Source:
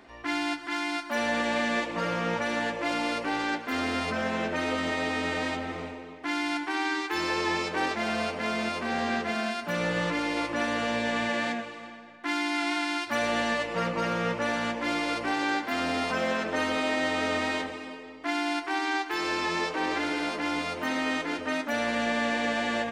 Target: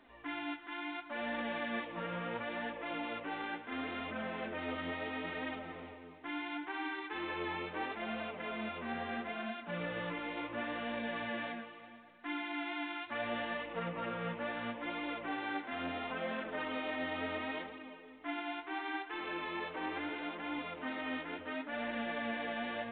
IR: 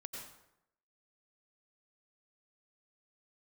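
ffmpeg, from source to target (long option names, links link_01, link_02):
-af "flanger=delay=3.1:depth=9.9:regen=33:speed=0.73:shape=triangular,volume=-7dB" -ar 8000 -c:a pcm_alaw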